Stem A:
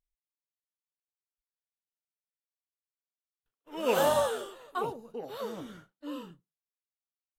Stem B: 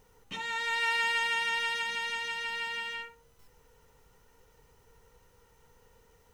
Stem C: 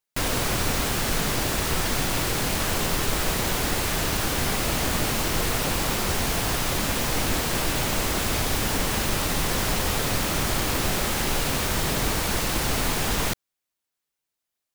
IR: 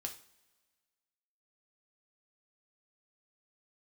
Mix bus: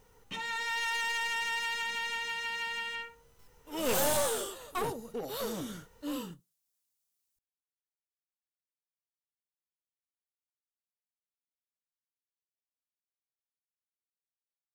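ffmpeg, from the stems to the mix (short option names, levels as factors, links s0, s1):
-filter_complex "[0:a]bass=f=250:g=4,treble=f=4000:g=13,asoftclip=type=tanh:threshold=0.0708,volume=1.26[s0];[1:a]asoftclip=type=hard:threshold=0.0376,volume=1[s1];[s0][s1]amix=inputs=2:normalize=0,aeval=exprs='clip(val(0),-1,0.0211)':c=same"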